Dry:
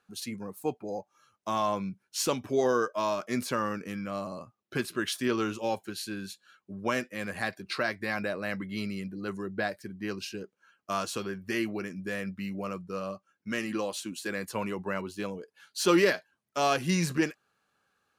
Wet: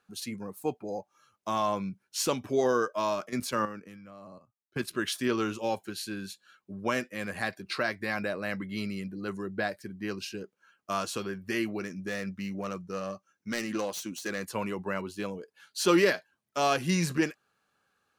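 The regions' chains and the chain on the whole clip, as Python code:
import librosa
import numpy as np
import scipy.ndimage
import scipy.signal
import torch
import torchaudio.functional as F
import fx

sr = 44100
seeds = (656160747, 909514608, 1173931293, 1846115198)

y = fx.chain(x, sr, fx.level_steps(step_db=10),
    fx.band_widen(depth_pct=100), at=(3.29, 4.94))
y = fx.chain(y, sr, fx.self_delay(depth_ms=0.13),
    fx.peak_eq(hz=6000.0, db=9.5, octaves=0.23), at=(11.81, 14.45))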